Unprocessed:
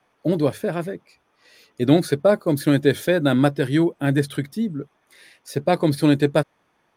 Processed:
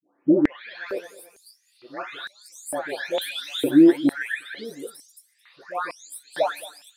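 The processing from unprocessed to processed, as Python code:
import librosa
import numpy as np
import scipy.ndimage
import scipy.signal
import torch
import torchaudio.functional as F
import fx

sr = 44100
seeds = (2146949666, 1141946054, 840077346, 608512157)

y = fx.spec_delay(x, sr, highs='late', ms=647)
y = fx.echo_feedback(y, sr, ms=219, feedback_pct=34, wet_db=-20.0)
y = fx.filter_held_highpass(y, sr, hz=2.2, low_hz=290.0, high_hz=7700.0)
y = y * librosa.db_to_amplitude(-3.0)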